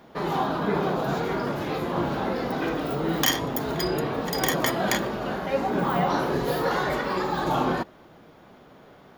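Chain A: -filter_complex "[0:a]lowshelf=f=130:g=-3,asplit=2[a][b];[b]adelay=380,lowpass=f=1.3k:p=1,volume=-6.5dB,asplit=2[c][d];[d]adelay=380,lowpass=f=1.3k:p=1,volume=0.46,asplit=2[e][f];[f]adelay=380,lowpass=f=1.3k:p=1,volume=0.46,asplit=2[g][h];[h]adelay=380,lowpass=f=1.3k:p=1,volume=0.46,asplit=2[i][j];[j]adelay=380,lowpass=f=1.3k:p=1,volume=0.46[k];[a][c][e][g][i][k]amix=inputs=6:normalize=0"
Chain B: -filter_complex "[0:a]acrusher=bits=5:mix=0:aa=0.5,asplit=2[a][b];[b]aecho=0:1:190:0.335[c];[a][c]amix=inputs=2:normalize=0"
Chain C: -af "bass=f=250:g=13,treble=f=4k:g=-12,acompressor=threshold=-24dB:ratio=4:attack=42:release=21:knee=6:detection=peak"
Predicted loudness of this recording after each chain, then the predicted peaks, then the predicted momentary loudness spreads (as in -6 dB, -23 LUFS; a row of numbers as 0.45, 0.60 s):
-25.5, -25.5, -23.5 LUFS; -6.0, -5.5, -10.5 dBFS; 7, 4, 2 LU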